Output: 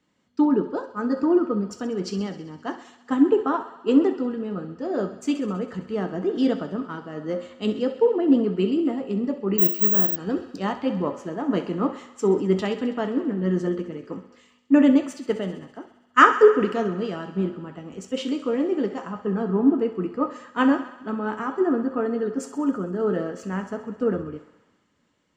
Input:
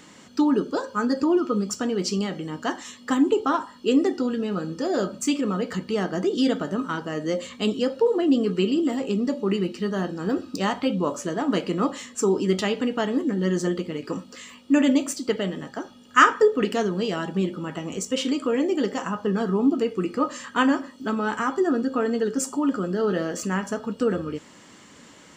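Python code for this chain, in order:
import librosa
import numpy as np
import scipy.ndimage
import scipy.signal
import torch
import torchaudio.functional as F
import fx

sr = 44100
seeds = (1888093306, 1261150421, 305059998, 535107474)

p1 = fx.lowpass(x, sr, hz=1300.0, slope=6)
p2 = p1 + fx.echo_thinned(p1, sr, ms=66, feedback_pct=84, hz=320.0, wet_db=-13.0, dry=0)
p3 = fx.resample_bad(p2, sr, factor=2, down='filtered', up='zero_stuff', at=(9.58, 10.16))
y = fx.band_widen(p3, sr, depth_pct=70)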